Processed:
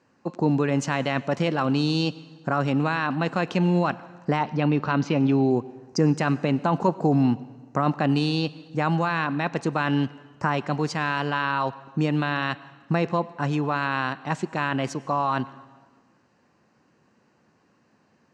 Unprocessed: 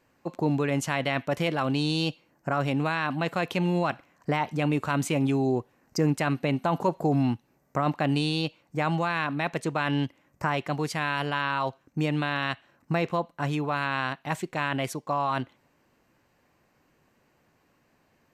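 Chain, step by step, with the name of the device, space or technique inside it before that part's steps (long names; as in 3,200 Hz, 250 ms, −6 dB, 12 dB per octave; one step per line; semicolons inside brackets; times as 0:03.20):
0:04.43–0:05.51: Butterworth low-pass 5,500 Hz 36 dB per octave
car door speaker (loudspeaker in its box 100–6,900 Hz, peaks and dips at 210 Hz +5 dB, 640 Hz −3 dB, 2,200 Hz −6 dB, 3,400 Hz −6 dB)
dense smooth reverb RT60 1.4 s, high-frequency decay 0.9×, pre-delay 85 ms, DRR 18.5 dB
level +3.5 dB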